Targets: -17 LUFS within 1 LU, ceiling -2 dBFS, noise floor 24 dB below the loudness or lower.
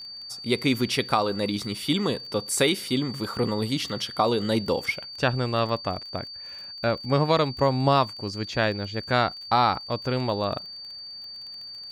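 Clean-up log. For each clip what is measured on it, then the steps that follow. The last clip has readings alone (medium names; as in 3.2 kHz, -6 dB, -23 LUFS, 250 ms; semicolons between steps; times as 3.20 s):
tick rate 31 per s; steady tone 4.6 kHz; tone level -37 dBFS; loudness -25.5 LUFS; peak level -7.5 dBFS; loudness target -17.0 LUFS
-> de-click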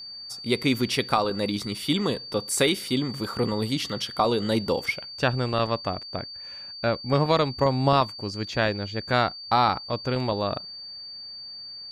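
tick rate 0 per s; steady tone 4.6 kHz; tone level -37 dBFS
-> band-stop 4.6 kHz, Q 30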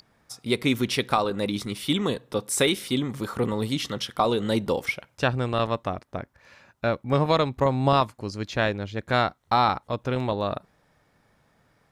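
steady tone not found; loudness -25.5 LUFS; peak level -7.5 dBFS; loudness target -17.0 LUFS
-> trim +8.5 dB; peak limiter -2 dBFS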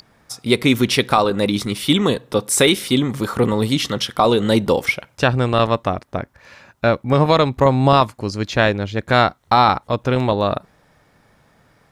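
loudness -17.5 LUFS; peak level -2.0 dBFS; noise floor -57 dBFS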